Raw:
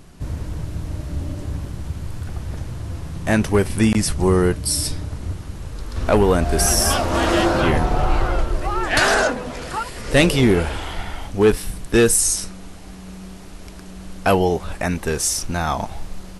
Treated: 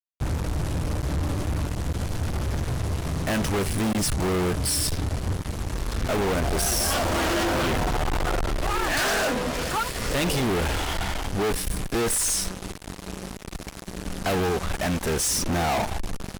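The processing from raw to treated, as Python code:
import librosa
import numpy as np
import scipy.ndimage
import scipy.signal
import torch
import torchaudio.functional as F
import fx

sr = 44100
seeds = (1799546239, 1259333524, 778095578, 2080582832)

y = fx.peak_eq(x, sr, hz=fx.line((15.26, 140.0), (15.81, 760.0)), db=14.0, octaves=1.5, at=(15.26, 15.81), fade=0.02)
y = fx.fuzz(y, sr, gain_db=33.0, gate_db=-34.0)
y = y * librosa.db_to_amplitude(-9.0)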